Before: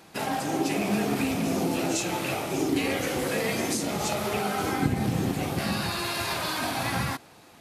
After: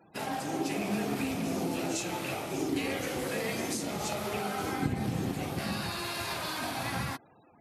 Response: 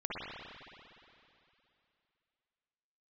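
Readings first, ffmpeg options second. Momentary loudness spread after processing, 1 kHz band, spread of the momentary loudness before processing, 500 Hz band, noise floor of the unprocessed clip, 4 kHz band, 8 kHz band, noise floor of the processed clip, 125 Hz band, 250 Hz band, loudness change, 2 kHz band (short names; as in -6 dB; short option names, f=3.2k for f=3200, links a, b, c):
3 LU, -5.5 dB, 3 LU, -5.5 dB, -52 dBFS, -5.5 dB, -5.5 dB, -60 dBFS, -5.5 dB, -5.5 dB, -5.5 dB, -5.5 dB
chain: -af "afftfilt=real='re*gte(hypot(re,im),0.00398)':imag='im*gte(hypot(re,im),0.00398)':win_size=1024:overlap=0.75,volume=-5.5dB"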